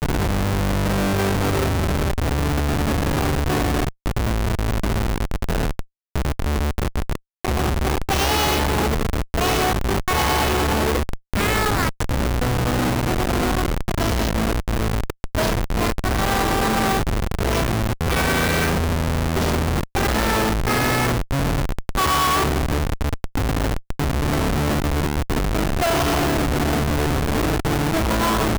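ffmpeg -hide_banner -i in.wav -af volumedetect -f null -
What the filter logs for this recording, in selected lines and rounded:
mean_volume: -20.4 dB
max_volume: -12.1 dB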